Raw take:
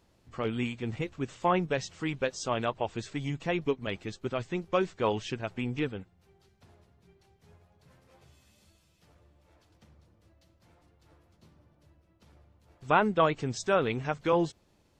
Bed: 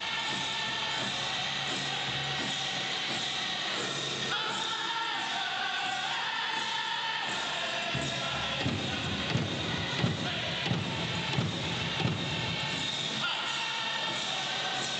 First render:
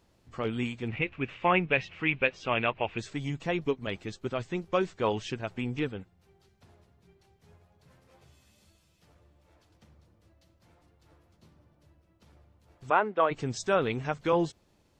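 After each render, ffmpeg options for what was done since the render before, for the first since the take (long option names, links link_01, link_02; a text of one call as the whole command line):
ffmpeg -i in.wav -filter_complex "[0:a]asettb=1/sr,asplit=3[link_01][link_02][link_03];[link_01]atrim=end=0.884[link_04];[link_02]atrim=start=0.88:end=2.98,asetpts=PTS-STARTPTS,afade=type=in:duration=0.004:curve=qsin,afade=type=out:start_time=2.096:duration=0.004:curve=qsin,lowpass=frequency=2500:width_type=q:width=4.6[link_05];[link_03]atrim=start=2.976[link_06];[link_04][link_05]acrossfade=duration=0.004:curve1=hsin:curve2=qsin[link_07];[link_07][link_06]acrossfade=duration=0.004:curve1=qsin:curve2=hsin,asplit=3[link_08][link_09][link_10];[link_08]afade=type=out:start_time=12.89:duration=0.02[link_11];[link_09]highpass=380,lowpass=2300,afade=type=in:start_time=12.89:duration=0.02,afade=type=out:start_time=13.3:duration=0.02[link_12];[link_10]afade=type=in:start_time=13.3:duration=0.02[link_13];[link_11][link_12][link_13]amix=inputs=3:normalize=0" out.wav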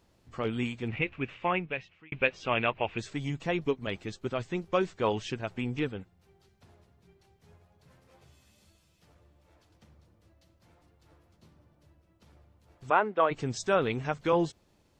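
ffmpeg -i in.wav -filter_complex "[0:a]asplit=2[link_01][link_02];[link_01]atrim=end=2.12,asetpts=PTS-STARTPTS,afade=type=out:start_time=1.11:duration=1.01[link_03];[link_02]atrim=start=2.12,asetpts=PTS-STARTPTS,afade=type=in:duration=0.004:curve=hsin[link_04];[link_03][link_04]concat=n=2:v=0:a=1" out.wav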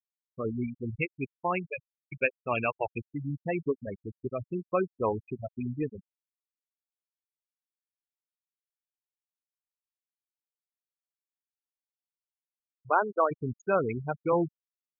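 ffmpeg -i in.wav -af "afftfilt=real='re*gte(hypot(re,im),0.0794)':imag='im*gte(hypot(re,im),0.0794)':win_size=1024:overlap=0.75" out.wav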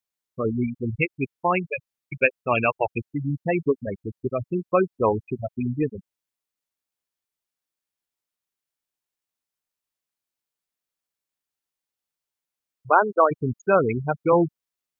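ffmpeg -i in.wav -af "volume=7.5dB" out.wav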